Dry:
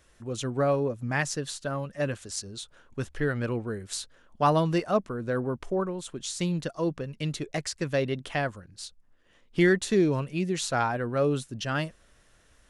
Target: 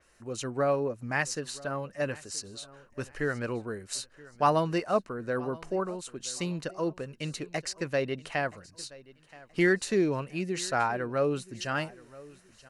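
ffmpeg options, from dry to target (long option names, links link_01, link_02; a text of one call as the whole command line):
ffmpeg -i in.wav -af "lowshelf=frequency=240:gain=-8.5,bandreject=frequency=3400:width=5.7,aecho=1:1:975|1950:0.0891|0.0294,adynamicequalizer=threshold=0.00355:dfrequency=4900:dqfactor=0.7:tfrequency=4900:tqfactor=0.7:attack=5:release=100:ratio=0.375:range=2.5:mode=cutabove:tftype=highshelf" out.wav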